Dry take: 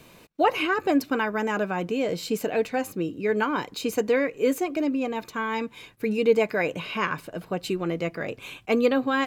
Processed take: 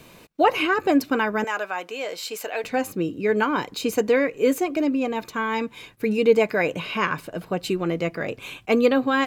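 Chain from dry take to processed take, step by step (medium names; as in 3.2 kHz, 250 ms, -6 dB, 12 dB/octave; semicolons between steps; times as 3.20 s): 1.44–2.64 s: high-pass 720 Hz 12 dB/octave; trim +3 dB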